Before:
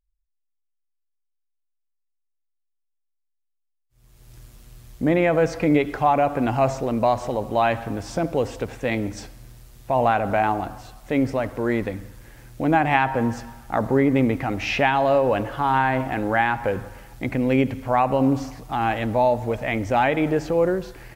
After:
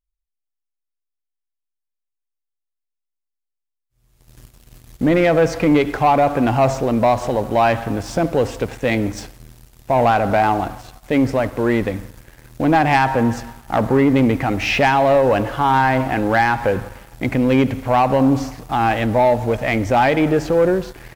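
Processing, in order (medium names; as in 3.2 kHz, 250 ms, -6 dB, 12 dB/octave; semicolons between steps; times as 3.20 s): waveshaping leveller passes 2; trim -1.5 dB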